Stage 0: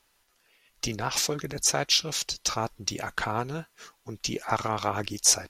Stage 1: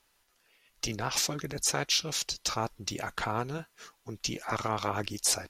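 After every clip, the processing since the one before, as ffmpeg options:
ffmpeg -i in.wav -af "afftfilt=real='re*lt(hypot(re,im),0.251)':imag='im*lt(hypot(re,im),0.251)':win_size=1024:overlap=0.75,volume=-2dB" out.wav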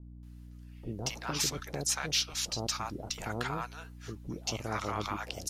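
ffmpeg -i in.wav -filter_complex "[0:a]aeval=exprs='val(0)+0.00562*(sin(2*PI*60*n/s)+sin(2*PI*2*60*n/s)/2+sin(2*PI*3*60*n/s)/3+sin(2*PI*4*60*n/s)/4+sin(2*PI*5*60*n/s)/5)':channel_layout=same,acrossover=split=730[link_01][link_02];[link_02]adelay=230[link_03];[link_01][link_03]amix=inputs=2:normalize=0,volume=-2dB" out.wav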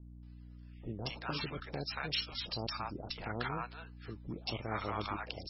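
ffmpeg -i in.wav -af "volume=-2.5dB" -ar 22050 -c:a libmp3lame -b:a 16k out.mp3

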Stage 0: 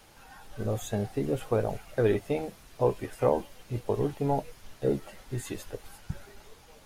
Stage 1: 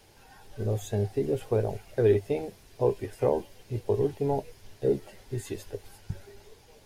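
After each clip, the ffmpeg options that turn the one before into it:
ffmpeg -i in.wav -af "equalizer=frequency=100:width_type=o:width=0.33:gain=9,equalizer=frequency=400:width_type=o:width=0.33:gain=8,equalizer=frequency=1250:width_type=o:width=0.33:gain=-8,equalizer=frequency=5000:width_type=o:width=0.33:gain=3,volume=-2.5dB" out.wav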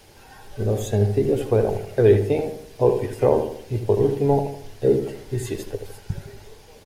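ffmpeg -i in.wav -filter_complex "[0:a]asplit=2[link_01][link_02];[link_02]adelay=78,lowpass=frequency=2000:poles=1,volume=-7dB,asplit=2[link_03][link_04];[link_04]adelay=78,lowpass=frequency=2000:poles=1,volume=0.46,asplit=2[link_05][link_06];[link_06]adelay=78,lowpass=frequency=2000:poles=1,volume=0.46,asplit=2[link_07][link_08];[link_08]adelay=78,lowpass=frequency=2000:poles=1,volume=0.46,asplit=2[link_09][link_10];[link_10]adelay=78,lowpass=frequency=2000:poles=1,volume=0.46[link_11];[link_01][link_03][link_05][link_07][link_09][link_11]amix=inputs=6:normalize=0,volume=7dB" out.wav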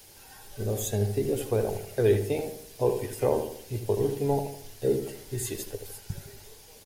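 ffmpeg -i in.wav -af "crystalizer=i=3:c=0,volume=-7.5dB" out.wav

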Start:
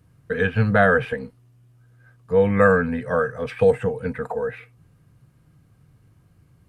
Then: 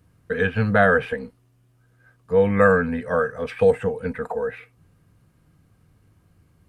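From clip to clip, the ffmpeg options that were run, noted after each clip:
ffmpeg -i in.wav -af "equalizer=frequency=130:width=5.5:gain=-11.5" out.wav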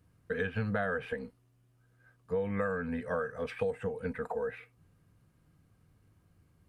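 ffmpeg -i in.wav -af "acompressor=threshold=-21dB:ratio=10,volume=-7.5dB" out.wav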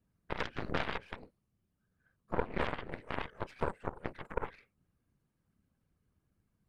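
ffmpeg -i in.wav -af "afftfilt=real='hypot(re,im)*cos(2*PI*random(0))':imag='hypot(re,im)*sin(2*PI*random(1))':win_size=512:overlap=0.75,aeval=exprs='0.075*(cos(1*acos(clip(val(0)/0.075,-1,1)))-cos(1*PI/2))+0.0266*(cos(4*acos(clip(val(0)/0.075,-1,1)))-cos(4*PI/2))+0.015*(cos(7*acos(clip(val(0)/0.075,-1,1)))-cos(7*PI/2))':channel_layout=same,volume=2.5dB" out.wav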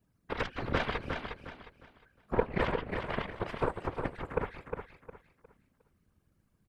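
ffmpeg -i in.wav -filter_complex "[0:a]afftfilt=real='hypot(re,im)*cos(2*PI*random(0))':imag='hypot(re,im)*sin(2*PI*random(1))':win_size=512:overlap=0.75,asplit=2[link_01][link_02];[link_02]aecho=0:1:358|716|1074|1432:0.473|0.137|0.0398|0.0115[link_03];[link_01][link_03]amix=inputs=2:normalize=0,volume=8.5dB" out.wav

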